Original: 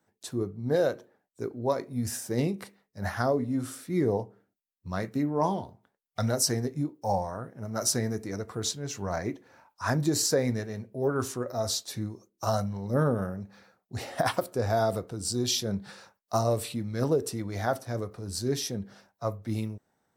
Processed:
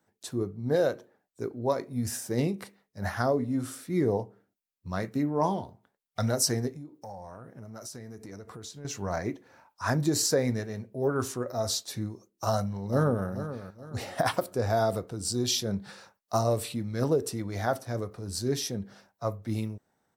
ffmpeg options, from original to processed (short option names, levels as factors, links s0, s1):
-filter_complex "[0:a]asettb=1/sr,asplit=3[s0][s1][s2];[s0]atrim=end=6.724[s3];[s1]atrim=start=6.72:end=8.85,asetpts=PTS-STARTPTS,afade=t=in:d=0.004:c=qsin,afade=t=out:st=2.126:d=0.004:c=qsin,acompressor=threshold=0.01:ratio=5:attack=3.2:release=140:knee=1:detection=peak[s4];[s2]atrim=start=8.846[s5];[s3][s4]acrossfade=d=0.004:c1=hsin:c2=qsin[s6];[s6][s5]acrossfade=d=0.004:c1=qsin:c2=hsin,asplit=2[s7][s8];[s8]afade=t=in:st=12.49:d=0.01,afade=t=out:st=13.27:d=0.01,aecho=0:1:430|860|1290|1720:0.266073|0.0931254|0.0325939|0.0114079[s9];[s7][s9]amix=inputs=2:normalize=0"